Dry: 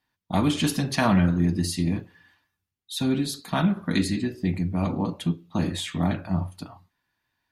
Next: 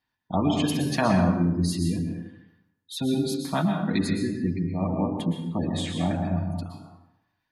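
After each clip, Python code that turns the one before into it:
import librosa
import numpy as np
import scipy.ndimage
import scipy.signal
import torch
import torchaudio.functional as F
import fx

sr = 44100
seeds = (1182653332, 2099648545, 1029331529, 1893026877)

y = fx.spec_gate(x, sr, threshold_db=-25, keep='strong')
y = fx.dynamic_eq(y, sr, hz=550.0, q=0.96, threshold_db=-36.0, ratio=4.0, max_db=4)
y = fx.rev_plate(y, sr, seeds[0], rt60_s=0.85, hf_ratio=0.7, predelay_ms=105, drr_db=3.0)
y = y * 10.0 ** (-3.0 / 20.0)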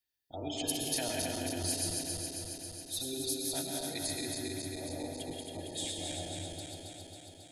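y = fx.reverse_delay_fb(x, sr, ms=136, feedback_pct=83, wet_db=-3)
y = librosa.effects.preemphasis(y, coef=0.8, zi=[0.0])
y = fx.fixed_phaser(y, sr, hz=460.0, stages=4)
y = y * 10.0 ** (1.5 / 20.0)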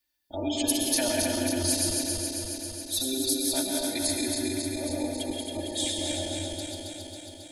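y = x + 0.87 * np.pad(x, (int(3.4 * sr / 1000.0), 0))[:len(x)]
y = y * 10.0 ** (5.5 / 20.0)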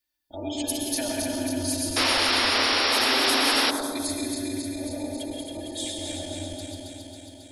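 y = fx.spec_paint(x, sr, seeds[1], shape='noise', start_s=1.96, length_s=1.75, low_hz=230.0, high_hz=5700.0, level_db=-20.0)
y = fx.echo_bbd(y, sr, ms=107, stages=1024, feedback_pct=67, wet_db=-5.5)
y = y * 10.0 ** (-3.0 / 20.0)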